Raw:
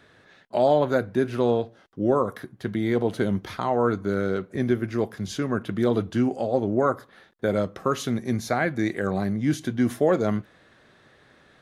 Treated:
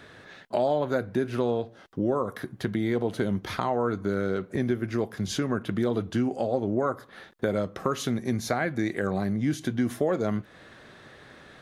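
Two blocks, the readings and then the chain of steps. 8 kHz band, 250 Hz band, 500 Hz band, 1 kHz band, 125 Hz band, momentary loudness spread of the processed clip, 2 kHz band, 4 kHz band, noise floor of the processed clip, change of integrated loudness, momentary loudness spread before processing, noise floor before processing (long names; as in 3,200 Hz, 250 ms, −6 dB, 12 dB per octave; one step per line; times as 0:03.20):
0.0 dB, −2.5 dB, −4.0 dB, −3.5 dB, −2.5 dB, 5 LU, −2.5 dB, 0.0 dB, −52 dBFS, −3.0 dB, 7 LU, −57 dBFS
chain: downward compressor 2.5 to 1, threshold −34 dBFS, peak gain reduction 12.5 dB
level +6.5 dB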